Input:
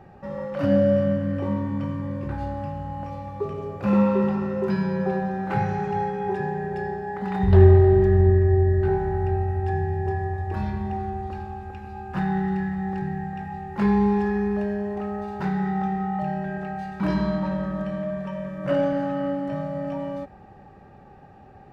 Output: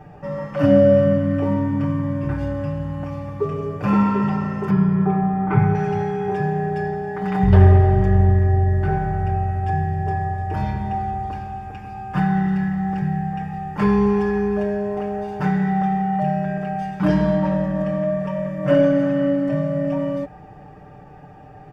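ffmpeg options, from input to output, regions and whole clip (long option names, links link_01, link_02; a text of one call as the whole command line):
ffmpeg -i in.wav -filter_complex "[0:a]asettb=1/sr,asplit=3[link_01][link_02][link_03];[link_01]atrim=end=4.704[link_04];[link_02]atrim=start=4.7:end=5.75,asetpts=PTS-STARTPTS,afade=type=in:duration=0.004:curve=qsin,afade=type=out:start_time=1.046:duration=0.004:curve=qsin,lowpass=2000,equalizer=frequency=390:width_type=o:width=0.33:gain=7,aecho=1:1:0.9:0.44,atrim=end_sample=46305[link_05];[link_03]atrim=start=5.746[link_06];[link_04][link_05]acrossfade=duration=0.004:curve1=hsin:curve2=qsin[link_07];[link_07][link_06]acrossfade=duration=0.004:curve1=qsin:curve2=hsin,equalizer=frequency=71:width=3.2:gain=12.5,bandreject=frequency=4000:width=6.1,aecho=1:1:6.7:0.93,volume=3dB" out.wav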